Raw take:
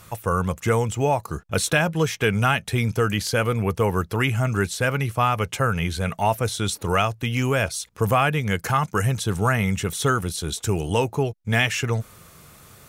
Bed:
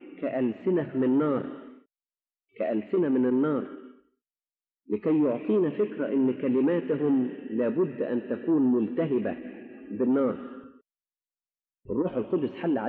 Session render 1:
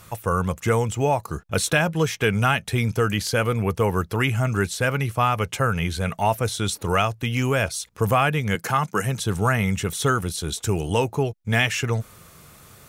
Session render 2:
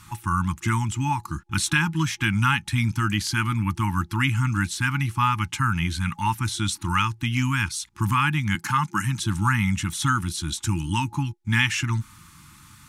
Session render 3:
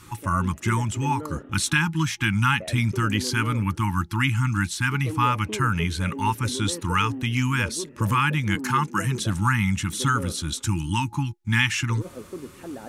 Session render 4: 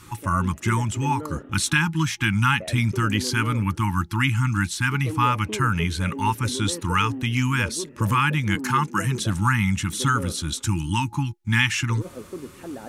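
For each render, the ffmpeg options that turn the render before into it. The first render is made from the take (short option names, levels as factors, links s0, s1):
-filter_complex "[0:a]asettb=1/sr,asplit=3[s0][s1][s2];[s0]atrim=end=8.554[s3];[s1]atrim=start=8.55:end=9.2,asetpts=PTS-STARTPTS,afade=t=in:d=0.004:c=qsin,afade=t=out:st=0.646:d=0.004:c=qsin,highpass=f=130:w=0.5412,highpass=f=130:w=1.3066[s4];[s2]atrim=start=9.196[s5];[s3][s4]acrossfade=d=0.004:c1=hsin:c2=qsin[s6];[s6][s5]acrossfade=d=0.004:c1=qsin:c2=hsin"
-af "afftfilt=real='re*(1-between(b*sr/4096,350,830))':imag='im*(1-between(b*sr/4096,350,830))':win_size=4096:overlap=0.75,lowpass=11000"
-filter_complex "[1:a]volume=0.316[s0];[0:a][s0]amix=inputs=2:normalize=0"
-af "volume=1.12"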